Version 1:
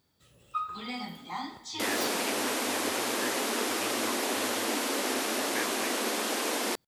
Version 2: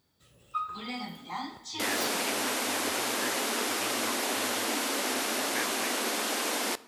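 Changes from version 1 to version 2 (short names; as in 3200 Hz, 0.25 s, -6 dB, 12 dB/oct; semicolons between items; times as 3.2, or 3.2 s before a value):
second sound: add bell 380 Hz -3.5 dB 1.8 oct; reverb: on, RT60 1.5 s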